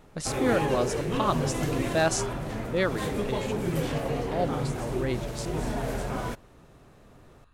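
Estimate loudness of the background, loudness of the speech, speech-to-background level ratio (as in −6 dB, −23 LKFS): −30.5 LKFS, −30.5 LKFS, 0.0 dB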